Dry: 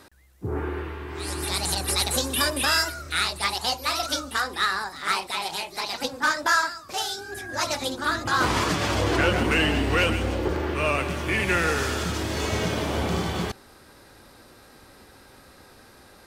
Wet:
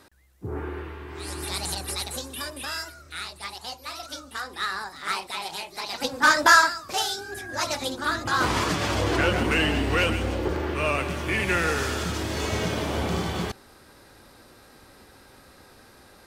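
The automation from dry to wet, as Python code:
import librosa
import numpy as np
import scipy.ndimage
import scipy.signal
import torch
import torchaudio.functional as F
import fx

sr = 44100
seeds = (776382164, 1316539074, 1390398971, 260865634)

y = fx.gain(x, sr, db=fx.line((1.65, -3.5), (2.35, -10.5), (4.11, -10.5), (4.81, -3.5), (5.83, -3.5), (6.39, 7.0), (7.44, -1.0)))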